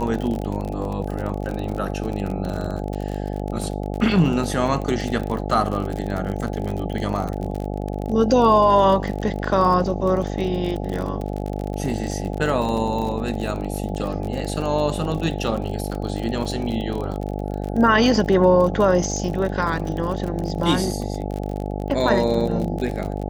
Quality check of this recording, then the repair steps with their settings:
buzz 50 Hz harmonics 17 -27 dBFS
crackle 41/s -26 dBFS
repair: de-click; de-hum 50 Hz, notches 17

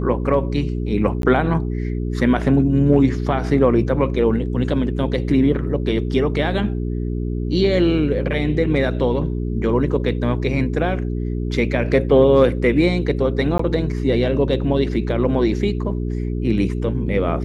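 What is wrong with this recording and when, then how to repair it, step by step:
hum 60 Hz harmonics 7 -23 dBFS
1.22–1.23 gap 12 ms
13.58–13.59 gap 14 ms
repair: de-hum 60 Hz, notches 7; interpolate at 1.22, 12 ms; interpolate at 13.58, 14 ms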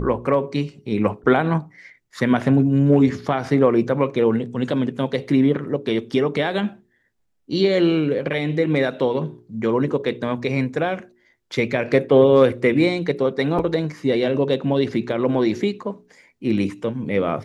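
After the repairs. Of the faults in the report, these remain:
none

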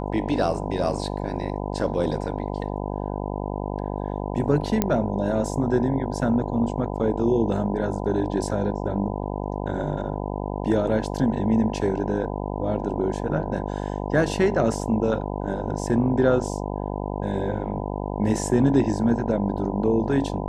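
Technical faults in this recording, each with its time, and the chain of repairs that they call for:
buzz 50 Hz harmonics 20 -29 dBFS
4.82 pop -6 dBFS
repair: de-click; de-hum 50 Hz, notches 20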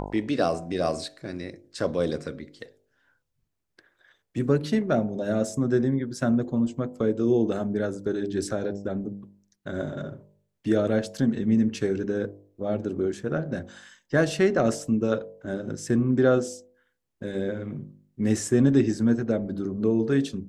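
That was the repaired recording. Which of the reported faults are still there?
none

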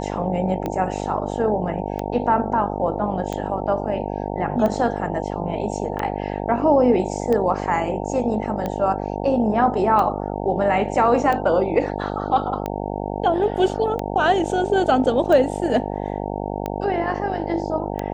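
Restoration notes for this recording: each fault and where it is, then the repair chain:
buzz 50 Hz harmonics 18 -27 dBFS
tick 45 rpm -13 dBFS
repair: de-click; de-hum 50 Hz, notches 18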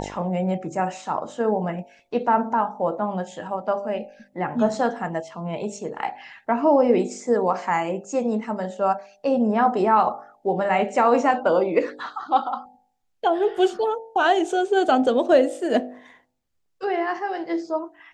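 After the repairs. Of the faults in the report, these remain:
none

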